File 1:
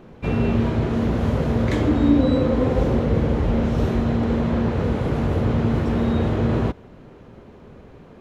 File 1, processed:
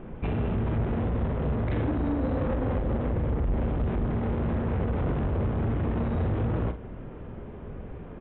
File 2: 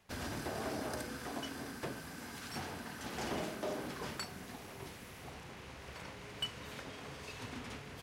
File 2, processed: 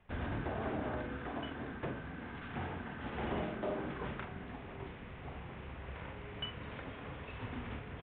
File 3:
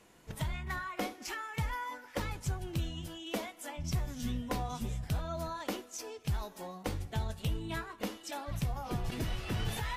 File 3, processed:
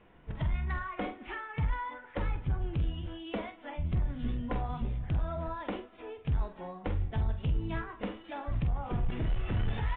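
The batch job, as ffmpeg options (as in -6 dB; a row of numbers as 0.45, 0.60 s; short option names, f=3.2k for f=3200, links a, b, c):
-filter_complex "[0:a]lowpass=2.6k,lowshelf=f=82:g=11.5,acompressor=threshold=-18dB:ratio=6,aresample=8000,asoftclip=type=tanh:threshold=-25dB,aresample=44100,asplit=2[a][b];[b]adelay=46,volume=-9dB[c];[a][c]amix=inputs=2:normalize=0,volume=1dB"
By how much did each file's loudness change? -7.5, +1.0, +2.5 LU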